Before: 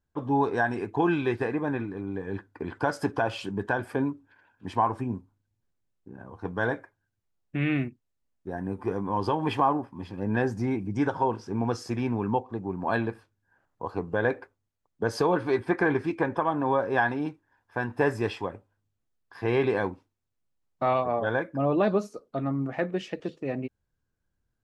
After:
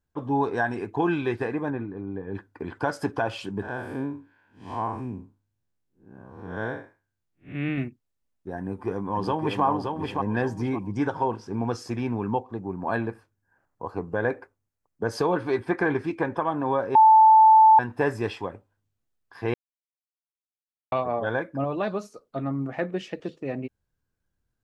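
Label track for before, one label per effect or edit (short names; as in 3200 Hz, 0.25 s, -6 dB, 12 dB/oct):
1.700000	2.350000	LPF 1100 Hz 6 dB/oct
3.620000	7.780000	time blur width 0.153 s
8.580000	9.640000	echo throw 0.57 s, feedback 30%, level -4 dB
12.600000	15.120000	bell 3500 Hz -6.5 dB 0.82 oct
16.950000	17.790000	bleep 878 Hz -10.5 dBFS
19.540000	20.920000	mute
21.640000	22.360000	bell 290 Hz -6.5 dB 2.4 oct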